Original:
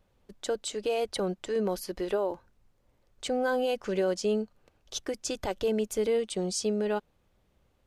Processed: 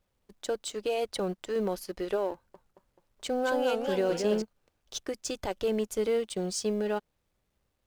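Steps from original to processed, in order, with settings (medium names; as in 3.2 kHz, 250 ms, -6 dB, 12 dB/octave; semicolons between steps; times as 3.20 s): companding laws mixed up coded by A; 2.33–4.42 s: modulated delay 216 ms, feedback 51%, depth 217 cents, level -5 dB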